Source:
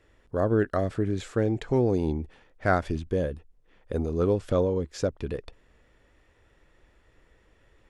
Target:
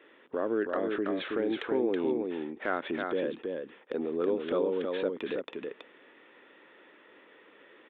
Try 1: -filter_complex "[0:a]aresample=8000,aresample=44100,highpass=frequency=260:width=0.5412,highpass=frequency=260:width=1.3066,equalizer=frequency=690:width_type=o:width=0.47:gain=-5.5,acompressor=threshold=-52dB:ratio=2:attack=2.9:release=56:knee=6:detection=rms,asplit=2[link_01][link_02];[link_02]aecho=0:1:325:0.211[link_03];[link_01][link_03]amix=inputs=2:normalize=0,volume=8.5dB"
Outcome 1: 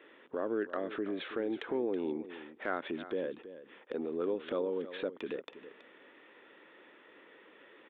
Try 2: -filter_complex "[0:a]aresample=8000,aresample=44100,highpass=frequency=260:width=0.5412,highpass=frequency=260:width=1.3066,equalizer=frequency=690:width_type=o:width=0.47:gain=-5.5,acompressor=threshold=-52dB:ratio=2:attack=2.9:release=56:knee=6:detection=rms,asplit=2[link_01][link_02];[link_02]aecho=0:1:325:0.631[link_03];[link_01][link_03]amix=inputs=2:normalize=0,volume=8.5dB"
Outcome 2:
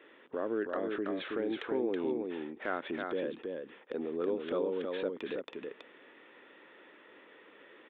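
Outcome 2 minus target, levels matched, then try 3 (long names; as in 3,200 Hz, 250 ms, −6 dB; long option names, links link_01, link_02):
downward compressor: peak gain reduction +4 dB
-filter_complex "[0:a]aresample=8000,aresample=44100,highpass=frequency=260:width=0.5412,highpass=frequency=260:width=1.3066,equalizer=frequency=690:width_type=o:width=0.47:gain=-5.5,acompressor=threshold=-44dB:ratio=2:attack=2.9:release=56:knee=6:detection=rms,asplit=2[link_01][link_02];[link_02]aecho=0:1:325:0.631[link_03];[link_01][link_03]amix=inputs=2:normalize=0,volume=8.5dB"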